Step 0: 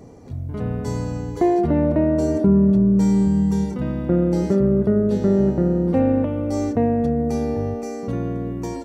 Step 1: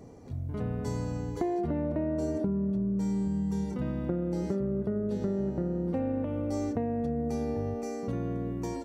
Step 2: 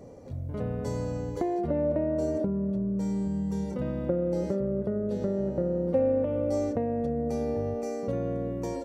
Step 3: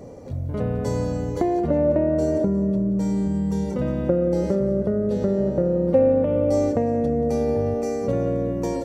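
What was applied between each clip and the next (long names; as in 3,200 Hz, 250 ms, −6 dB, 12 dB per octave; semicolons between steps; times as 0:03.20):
downward compressor, threshold −21 dBFS, peak gain reduction 9.5 dB; level −6 dB
parametric band 550 Hz +15 dB 0.24 octaves
echo with a time of its own for lows and highs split 440 Hz, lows 446 ms, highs 179 ms, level −15 dB; level +7 dB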